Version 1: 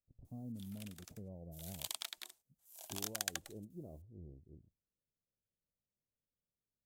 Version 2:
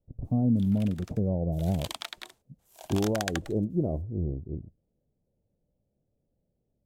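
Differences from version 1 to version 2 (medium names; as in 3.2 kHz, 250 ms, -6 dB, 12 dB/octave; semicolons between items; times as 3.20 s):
speech +8.5 dB; master: remove pre-emphasis filter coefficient 0.8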